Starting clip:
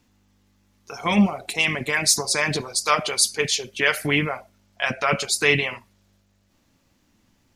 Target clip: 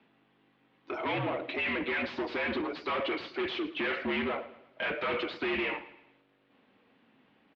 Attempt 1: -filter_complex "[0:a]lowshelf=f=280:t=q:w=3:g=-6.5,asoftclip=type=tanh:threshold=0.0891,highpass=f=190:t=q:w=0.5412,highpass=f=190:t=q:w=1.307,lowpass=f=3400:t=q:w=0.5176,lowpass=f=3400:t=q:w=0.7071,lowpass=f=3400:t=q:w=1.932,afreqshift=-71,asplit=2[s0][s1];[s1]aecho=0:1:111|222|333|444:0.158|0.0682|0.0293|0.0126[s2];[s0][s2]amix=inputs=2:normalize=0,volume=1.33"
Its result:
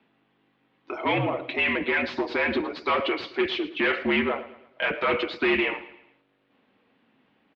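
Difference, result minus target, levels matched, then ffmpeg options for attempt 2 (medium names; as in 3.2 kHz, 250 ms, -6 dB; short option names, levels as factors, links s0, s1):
saturation: distortion -5 dB
-filter_complex "[0:a]lowshelf=f=280:t=q:w=3:g=-6.5,asoftclip=type=tanh:threshold=0.0266,highpass=f=190:t=q:w=0.5412,highpass=f=190:t=q:w=1.307,lowpass=f=3400:t=q:w=0.5176,lowpass=f=3400:t=q:w=0.7071,lowpass=f=3400:t=q:w=1.932,afreqshift=-71,asplit=2[s0][s1];[s1]aecho=0:1:111|222|333|444:0.158|0.0682|0.0293|0.0126[s2];[s0][s2]amix=inputs=2:normalize=0,volume=1.33"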